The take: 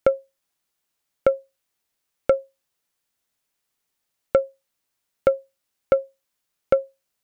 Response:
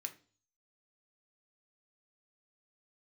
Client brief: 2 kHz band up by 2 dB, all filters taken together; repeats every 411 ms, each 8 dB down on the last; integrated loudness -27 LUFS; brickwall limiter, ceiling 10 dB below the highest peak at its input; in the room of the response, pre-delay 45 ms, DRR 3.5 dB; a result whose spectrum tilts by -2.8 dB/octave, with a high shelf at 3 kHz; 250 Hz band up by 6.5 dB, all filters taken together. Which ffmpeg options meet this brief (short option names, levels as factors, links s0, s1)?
-filter_complex "[0:a]equalizer=f=250:t=o:g=8.5,equalizer=f=2000:t=o:g=4.5,highshelf=f=3000:g=-5,alimiter=limit=0.224:level=0:latency=1,aecho=1:1:411|822|1233|1644|2055:0.398|0.159|0.0637|0.0255|0.0102,asplit=2[s0][s1];[1:a]atrim=start_sample=2205,adelay=45[s2];[s1][s2]afir=irnorm=-1:irlink=0,volume=0.891[s3];[s0][s3]amix=inputs=2:normalize=0,volume=1.33"